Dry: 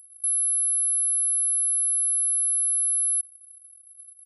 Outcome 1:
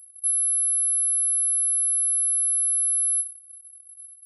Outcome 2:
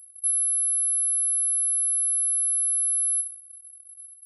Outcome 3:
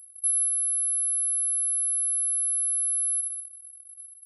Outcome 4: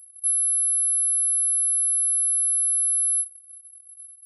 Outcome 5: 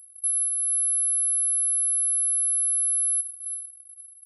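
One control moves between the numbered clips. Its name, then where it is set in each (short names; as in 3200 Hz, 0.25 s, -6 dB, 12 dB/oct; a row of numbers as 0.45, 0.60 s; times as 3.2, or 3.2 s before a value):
non-linear reverb, gate: 0.15, 0.22, 0.34, 0.1, 0.53 s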